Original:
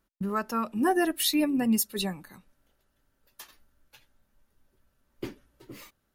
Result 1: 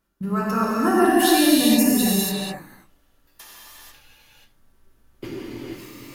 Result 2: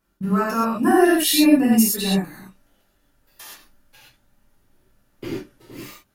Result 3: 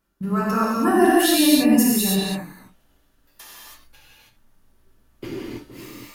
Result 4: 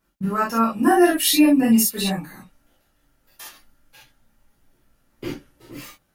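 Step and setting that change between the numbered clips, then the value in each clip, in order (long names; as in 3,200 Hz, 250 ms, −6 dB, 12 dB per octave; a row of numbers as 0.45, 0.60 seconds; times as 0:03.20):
reverb whose tail is shaped and stops, gate: 510, 150, 350, 90 milliseconds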